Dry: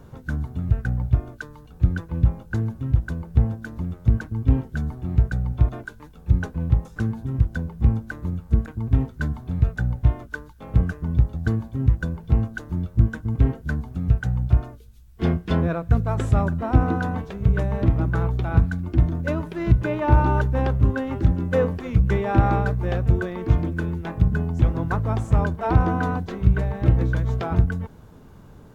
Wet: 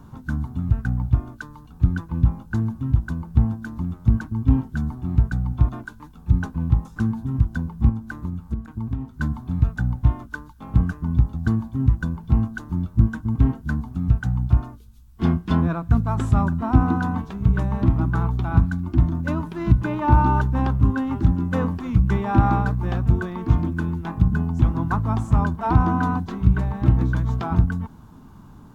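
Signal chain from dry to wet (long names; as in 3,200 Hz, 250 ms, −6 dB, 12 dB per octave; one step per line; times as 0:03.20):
octave-band graphic EQ 250/500/1,000/2,000 Hz +7/−12/+8/−5 dB
0:07.89–0:09.21: downward compressor 5 to 1, threshold −24 dBFS, peak gain reduction 12 dB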